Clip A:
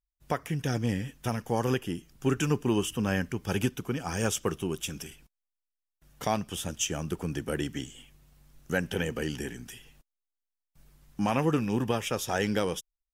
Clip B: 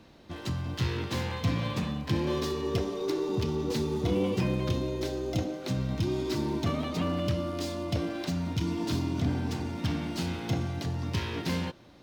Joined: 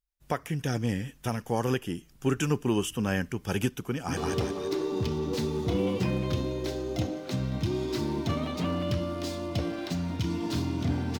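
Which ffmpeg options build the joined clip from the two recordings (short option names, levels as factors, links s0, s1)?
-filter_complex "[0:a]apad=whole_dur=11.19,atrim=end=11.19,atrim=end=4.172[s0];[1:a]atrim=start=2.538:end=9.56[s1];[s0][s1]acrossfade=d=0.004:c1=hsin:c2=hsin,asplit=2[s2][s3];[s3]afade=t=in:st=3.91:d=0.01,afade=t=out:st=4.17:d=0.01,aecho=0:1:170|340|510|680|850|1020|1190:0.891251|0.445625|0.222813|0.111406|0.0557032|0.0278516|0.0139258[s4];[s2][s4]amix=inputs=2:normalize=0"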